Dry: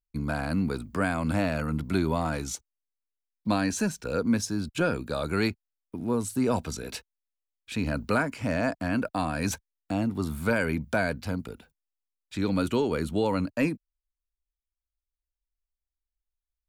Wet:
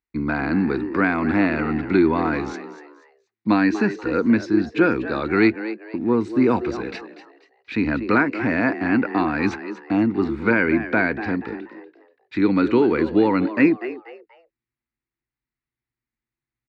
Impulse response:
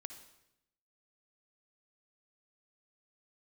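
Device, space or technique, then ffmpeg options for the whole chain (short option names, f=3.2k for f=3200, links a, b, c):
frequency-shifting delay pedal into a guitar cabinet: -filter_complex "[0:a]asettb=1/sr,asplit=3[a][b][c];[a]atrim=end=10.434[d];[b]atrim=start=10.43:end=11.24,asetpts=PTS-STARTPTS,afade=t=in:d=0.004:c=qsin,afade=t=out:st=0.806:d=0.004:c=qsin,acrossover=split=4800[e][f];[f]acompressor=threshold=-56dB:ratio=4:attack=1:release=60[g];[e][g]amix=inputs=2:normalize=0[h];[c]atrim=start=11.236[i];[d][h]acrossfade=d=0.004:c1=hsin:c2=qsin[j];[j][i]acrossfade=d=0.004:c1=qsin:c2=hsin,asplit=4[k][l][m][n];[l]adelay=241,afreqshift=110,volume=-13dB[o];[m]adelay=482,afreqshift=220,volume=-22.4dB[p];[n]adelay=723,afreqshift=330,volume=-31.7dB[q];[k][o][p][q]amix=inputs=4:normalize=0,highpass=93,equalizer=f=94:t=q:w=4:g=-9,equalizer=f=160:t=q:w=4:g=-8,equalizer=f=330:t=q:w=4:g=8,equalizer=f=600:t=q:w=4:g=-9,equalizer=f=2k:t=q:w=4:g=7,equalizer=f=3.2k:t=q:w=4:g=-10,lowpass=f=3.7k:w=0.5412,lowpass=f=3.7k:w=1.3066,volume=7.5dB"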